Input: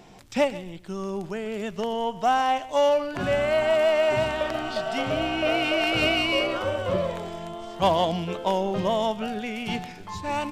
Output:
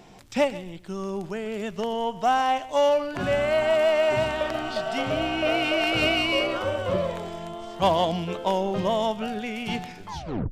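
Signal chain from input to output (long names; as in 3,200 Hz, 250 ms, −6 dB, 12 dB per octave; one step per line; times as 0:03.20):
turntable brake at the end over 0.41 s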